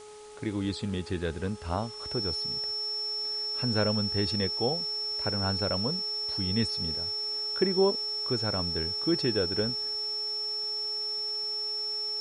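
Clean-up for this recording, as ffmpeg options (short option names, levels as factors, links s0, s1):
-af "bandreject=f=422.2:t=h:w=4,bandreject=f=844.4:t=h:w=4,bandreject=f=1266.6:t=h:w=4,bandreject=f=5400:w=30,afwtdn=0.0025"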